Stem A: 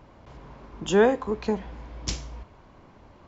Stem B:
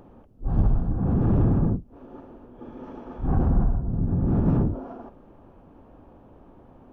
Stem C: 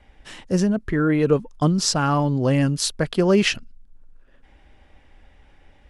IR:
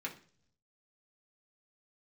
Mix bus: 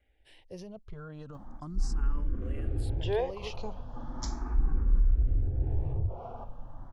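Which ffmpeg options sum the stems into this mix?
-filter_complex "[0:a]adelay=2150,volume=-8.5dB[a];[1:a]acompressor=threshold=-35dB:ratio=2,adelay=1350,volume=2.5dB,asplit=2[b][c];[c]volume=-11dB[d];[2:a]volume=-16.5dB[e];[b][e]amix=inputs=2:normalize=0,alimiter=level_in=5dB:limit=-24dB:level=0:latency=1:release=44,volume=-5dB,volume=0dB[f];[3:a]atrim=start_sample=2205[g];[d][g]afir=irnorm=-1:irlink=0[h];[a][f][h]amix=inputs=3:normalize=0,asubboost=boost=10.5:cutoff=65,asplit=2[i][j];[j]afreqshift=0.37[k];[i][k]amix=inputs=2:normalize=1"

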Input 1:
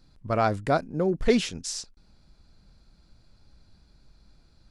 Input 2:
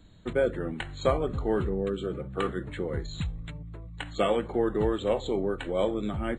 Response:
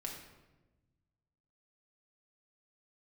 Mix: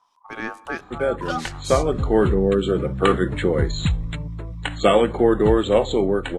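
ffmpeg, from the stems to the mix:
-filter_complex "[0:a]acrossover=split=1100[a][b];[a]aeval=exprs='val(0)*(1-0.5/2+0.5/2*cos(2*PI*4.3*n/s))':c=same[c];[b]aeval=exprs='val(0)*(1-0.5/2-0.5/2*cos(2*PI*4.3*n/s))':c=same[d];[c][d]amix=inputs=2:normalize=0,aeval=exprs='val(0)*sin(2*PI*1000*n/s)':c=same,volume=-3.5dB,asplit=2[e][f];[f]volume=-16.5dB[g];[1:a]highshelf=f=5k:g=-4,dynaudnorm=f=550:g=5:m=11.5dB,adelay=650,volume=1dB[h];[2:a]atrim=start_sample=2205[i];[g][i]afir=irnorm=-1:irlink=0[j];[e][h][j]amix=inputs=3:normalize=0,highshelf=f=5.6k:g=6.5,dynaudnorm=f=200:g=11:m=3dB"

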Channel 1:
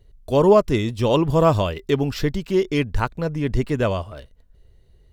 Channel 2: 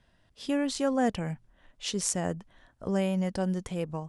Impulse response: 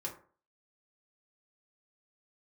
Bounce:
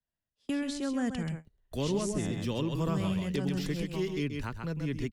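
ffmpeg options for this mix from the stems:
-filter_complex "[0:a]acompressor=mode=upward:threshold=-22dB:ratio=2.5,adelay=1450,volume=-7.5dB,asplit=2[a][b];[b]volume=-7dB[c];[1:a]volume=0dB,asplit=2[d][e];[e]volume=-8.5dB[f];[c][f]amix=inputs=2:normalize=0,aecho=0:1:131:1[g];[a][d][g]amix=inputs=3:normalize=0,agate=range=-28dB:threshold=-36dB:ratio=16:detection=peak,acrossover=split=130|360|1200[h][i][j][k];[h]acompressor=threshold=-42dB:ratio=4[l];[i]acompressor=threshold=-29dB:ratio=4[m];[j]acompressor=threshold=-50dB:ratio=4[n];[k]acompressor=threshold=-40dB:ratio=4[o];[l][m][n][o]amix=inputs=4:normalize=0"

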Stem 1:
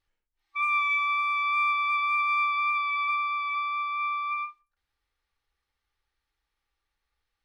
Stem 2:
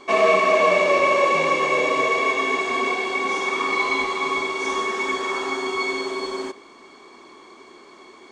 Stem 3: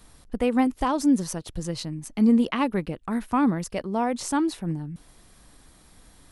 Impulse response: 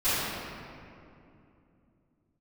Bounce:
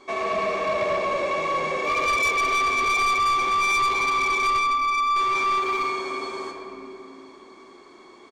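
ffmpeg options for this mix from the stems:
-filter_complex "[0:a]aeval=exprs='val(0)*gte(abs(val(0)),0.00316)':c=same,adelay=1300,volume=1dB,asplit=2[a][b];[b]volume=-8.5dB[c];[1:a]volume=-6.5dB,asplit=3[d][e][f];[d]atrim=end=4.59,asetpts=PTS-STARTPTS,afade=t=out:st=4.586:d=0.004:c=hsin[g];[e]atrim=start=4.59:end=5.16,asetpts=PTS-STARTPTS,volume=0[h];[f]atrim=start=5.16,asetpts=PTS-STARTPTS,afade=t=in:d=0.004:c=hsin[i];[g][h][i]concat=n=3:v=0:a=1,asplit=2[j][k];[k]volume=-14dB[l];[j]acompressor=threshold=-26dB:ratio=6,volume=0dB[m];[3:a]atrim=start_sample=2205[n];[c][l]amix=inputs=2:normalize=0[o];[o][n]afir=irnorm=-1:irlink=0[p];[a][m][p]amix=inputs=3:normalize=0,bandreject=f=2.9k:w=12,asoftclip=type=tanh:threshold=-18.5dB"

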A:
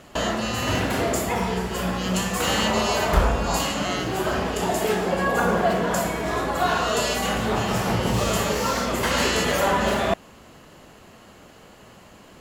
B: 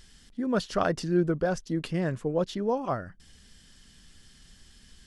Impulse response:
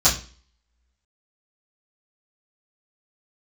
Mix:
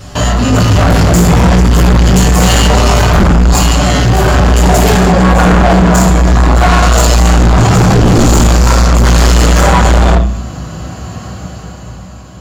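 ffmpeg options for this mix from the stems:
-filter_complex "[0:a]dynaudnorm=f=130:g=17:m=12.5dB,volume=1dB,asplit=2[a][b];[b]volume=-16.5dB[c];[1:a]volume=1.5dB,asplit=3[d][e][f];[e]volume=-11dB[g];[f]apad=whole_len=547092[h];[a][h]sidechaingate=range=-33dB:threshold=-57dB:ratio=16:detection=peak[i];[2:a]atrim=start_sample=2205[j];[c][g]amix=inputs=2:normalize=0[k];[k][j]afir=irnorm=-1:irlink=0[l];[i][d][l]amix=inputs=3:normalize=0,equalizer=f=120:t=o:w=1.8:g=8.5,acontrast=86,asoftclip=type=tanh:threshold=-2.5dB"

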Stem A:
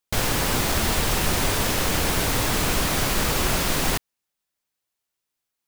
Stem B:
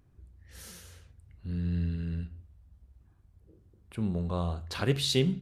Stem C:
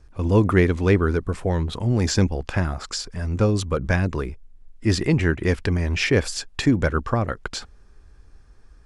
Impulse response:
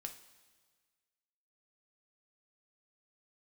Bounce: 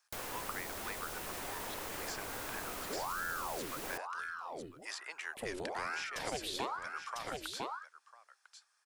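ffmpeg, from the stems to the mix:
-filter_complex "[0:a]volume=-17dB[a];[1:a]aeval=exprs='val(0)*sin(2*PI*860*n/s+860*0.8/1.1*sin(2*PI*1.1*n/s))':c=same,adelay=1450,volume=2.5dB,asplit=2[b][c];[c]volume=-9.5dB[d];[2:a]highpass=f=860:w=0.5412,highpass=f=860:w=1.3066,volume=-11dB,asplit=2[e][f];[f]volume=-19.5dB[g];[d][g]amix=inputs=2:normalize=0,aecho=0:1:999:1[h];[a][b][e][h]amix=inputs=4:normalize=0,highshelf=f=5.3k:g=11,acrossover=split=280|1100|2400[i][j][k][l];[i]acompressor=threshold=-54dB:ratio=4[m];[j]acompressor=threshold=-41dB:ratio=4[n];[k]acompressor=threshold=-46dB:ratio=4[o];[l]acompressor=threshold=-46dB:ratio=4[p];[m][n][o][p]amix=inputs=4:normalize=0"

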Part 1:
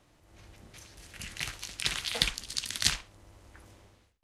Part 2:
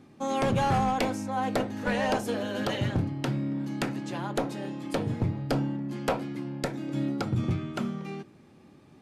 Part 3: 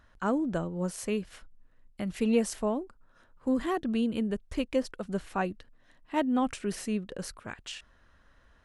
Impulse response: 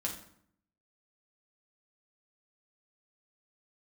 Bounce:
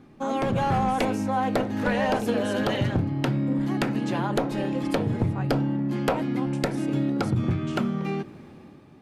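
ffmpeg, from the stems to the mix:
-filter_complex "[0:a]alimiter=limit=-11dB:level=0:latency=1:release=249,volume=-10.5dB[a];[1:a]dynaudnorm=f=150:g=9:m=9dB,volume=2.5dB[b];[2:a]volume=-7.5dB[c];[a][b]amix=inputs=2:normalize=0,equalizer=f=7.7k:t=o:w=1.9:g=-7,acompressor=threshold=-25dB:ratio=2.5,volume=0dB[d];[c][d]amix=inputs=2:normalize=0"

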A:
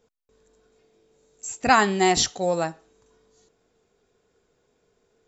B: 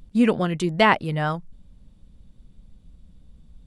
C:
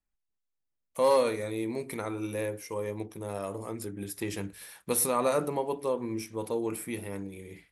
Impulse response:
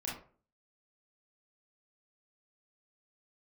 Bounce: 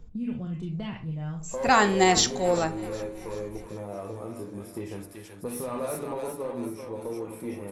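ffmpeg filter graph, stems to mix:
-filter_complex "[0:a]volume=2dB,asplit=3[a][b][c];[b]volume=-17.5dB[d];[c]volume=-23dB[e];[1:a]bass=f=250:g=3,treble=f=4k:g=-13,acrossover=split=170|3000[f][g][h];[g]acompressor=threshold=-36dB:ratio=6[i];[f][i][h]amix=inputs=3:normalize=0,volume=-5dB,asplit=3[j][k][l];[k]volume=-8dB[m];[2:a]asoftclip=type=tanh:threshold=-22.5dB,adelay=550,volume=-1dB,asplit=3[n][o][p];[o]volume=-8dB[q];[p]volume=-10dB[r];[l]apad=whole_len=232447[s];[a][s]sidechaincompress=threshold=-47dB:ratio=8:attack=29:release=531[t];[j][n]amix=inputs=2:normalize=0,lowpass=1.2k,acompressor=threshold=-33dB:ratio=6,volume=0dB[u];[3:a]atrim=start_sample=2205[v];[d][m][q]amix=inputs=3:normalize=0[w];[w][v]afir=irnorm=-1:irlink=0[x];[e][r]amix=inputs=2:normalize=0,aecho=0:1:381|762|1143|1524|1905|2286|2667:1|0.51|0.26|0.133|0.0677|0.0345|0.0176[y];[t][u][x][y]amix=inputs=4:normalize=0,asoftclip=type=tanh:threshold=-6.5dB"

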